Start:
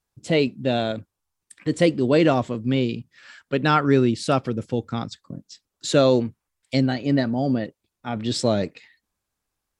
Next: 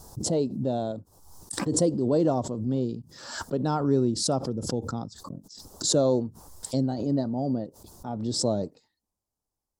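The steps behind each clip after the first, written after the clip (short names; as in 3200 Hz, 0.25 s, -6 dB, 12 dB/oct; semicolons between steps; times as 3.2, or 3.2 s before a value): EQ curve 920 Hz 0 dB, 2300 Hz -26 dB, 5000 Hz -2 dB; backwards sustainer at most 62 dB/s; gain -5.5 dB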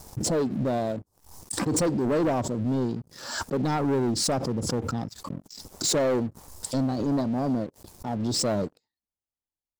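sample leveller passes 3; gain -7 dB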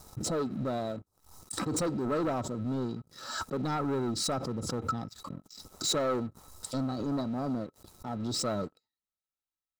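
small resonant body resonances 1300/3900 Hz, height 17 dB, ringing for 65 ms; gain -6.5 dB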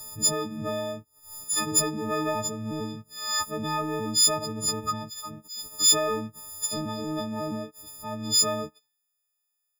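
frequency quantiser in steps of 6 st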